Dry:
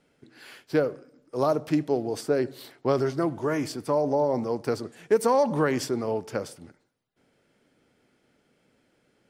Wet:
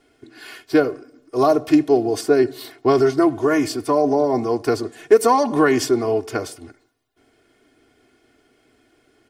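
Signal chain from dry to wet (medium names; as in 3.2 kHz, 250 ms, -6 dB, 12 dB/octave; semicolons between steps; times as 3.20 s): comb 2.8 ms, depth 96%; trim +5.5 dB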